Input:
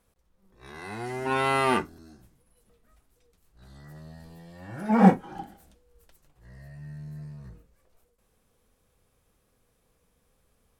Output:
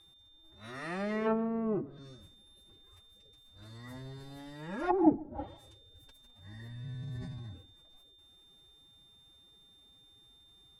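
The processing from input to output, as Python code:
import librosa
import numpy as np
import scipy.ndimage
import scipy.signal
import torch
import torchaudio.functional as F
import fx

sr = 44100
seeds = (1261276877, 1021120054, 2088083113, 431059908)

p1 = fx.pitch_keep_formants(x, sr, semitones=9.0)
p2 = p1 + 10.0 ** (-59.0 / 20.0) * np.sin(2.0 * np.pi * 3600.0 * np.arange(len(p1)) / sr)
p3 = fx.env_lowpass_down(p2, sr, base_hz=300.0, full_db=-21.5)
y = p3 + fx.echo_single(p3, sr, ms=138, db=-22.5, dry=0)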